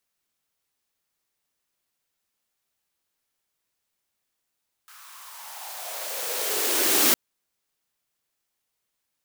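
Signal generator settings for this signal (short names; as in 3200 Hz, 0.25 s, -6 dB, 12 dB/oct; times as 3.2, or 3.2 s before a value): swept filtered noise white, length 2.26 s highpass, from 1300 Hz, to 280 Hz, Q 4.6, exponential, gain ramp +32 dB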